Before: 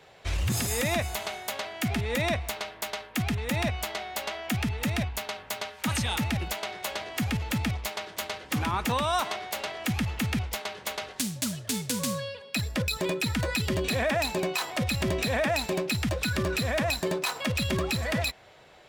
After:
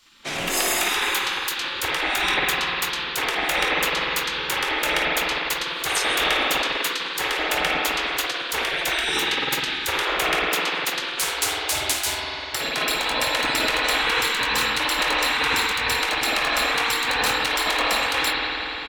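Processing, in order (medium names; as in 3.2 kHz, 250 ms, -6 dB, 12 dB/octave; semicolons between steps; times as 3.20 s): doubling 22 ms -10 dB; spring tank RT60 3.9 s, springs 50 ms, chirp 40 ms, DRR -6 dB; spectral gate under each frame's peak -15 dB weak; trim +7.5 dB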